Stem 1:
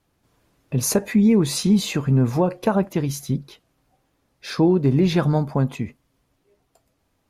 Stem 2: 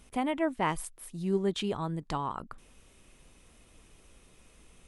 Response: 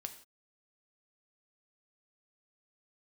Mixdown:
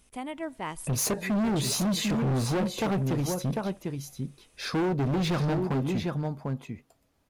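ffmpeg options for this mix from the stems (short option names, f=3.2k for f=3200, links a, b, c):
-filter_complex "[0:a]adelay=150,volume=-2.5dB,asplit=2[a][b];[b]volume=-8.5dB[c];[1:a]highshelf=f=4k:g=7,volume=-7.5dB,asplit=2[d][e];[e]volume=-14dB[f];[2:a]atrim=start_sample=2205[g];[f][g]afir=irnorm=-1:irlink=0[h];[c]aecho=0:1:747:1[i];[a][d][h][i]amix=inputs=4:normalize=0,asoftclip=type=hard:threshold=-24dB"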